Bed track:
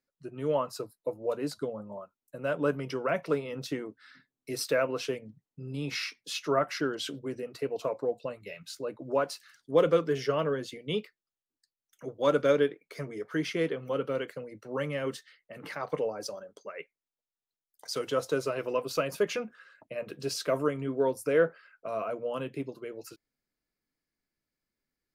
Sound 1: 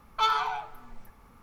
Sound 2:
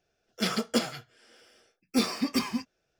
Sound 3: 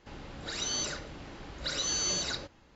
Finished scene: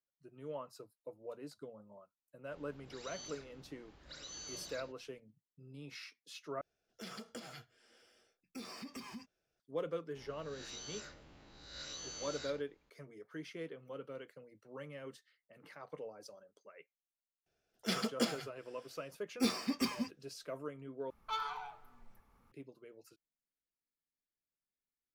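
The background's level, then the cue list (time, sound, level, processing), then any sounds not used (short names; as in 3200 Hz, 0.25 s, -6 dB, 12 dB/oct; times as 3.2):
bed track -15.5 dB
2.45 add 3 -17 dB
6.61 replace with 2 -9 dB + compressor 4:1, threshold -36 dBFS
10.15 add 3 -17 dB + spectral swells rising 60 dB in 0.81 s
17.46 add 2 -7 dB
21.1 replace with 1 -13.5 dB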